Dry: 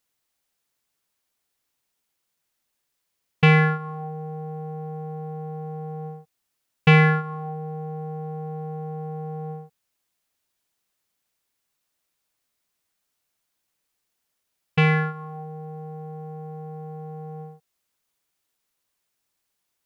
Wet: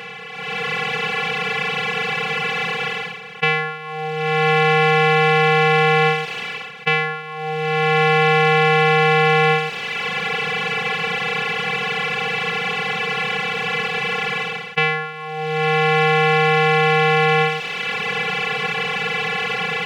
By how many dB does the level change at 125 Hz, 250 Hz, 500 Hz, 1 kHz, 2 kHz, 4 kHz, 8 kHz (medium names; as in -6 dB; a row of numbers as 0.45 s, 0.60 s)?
+0.5 dB, +1.0 dB, +13.5 dB, +14.5 dB, +13.5 dB, +17.5 dB, no reading